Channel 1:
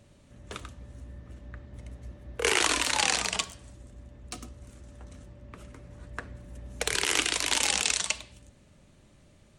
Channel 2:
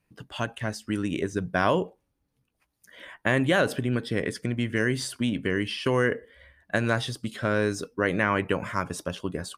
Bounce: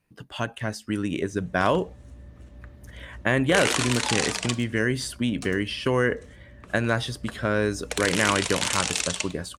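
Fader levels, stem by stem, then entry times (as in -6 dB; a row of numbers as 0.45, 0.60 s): -0.5, +1.0 dB; 1.10, 0.00 s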